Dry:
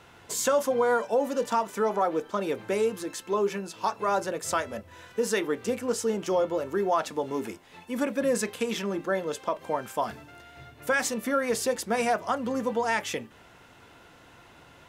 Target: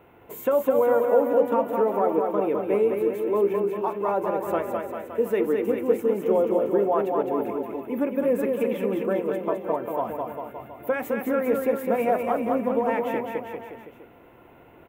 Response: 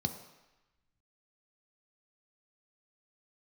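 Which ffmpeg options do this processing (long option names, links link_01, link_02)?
-af "firequalizer=gain_entry='entry(130,0);entry(330,7);entry(1600,-6);entry(2300,-1);entry(4800,-27);entry(9900,-12);entry(15000,10)':delay=0.05:min_phase=1,aecho=1:1:210|399|569.1|722.2|860:0.631|0.398|0.251|0.158|0.1,volume=-2dB"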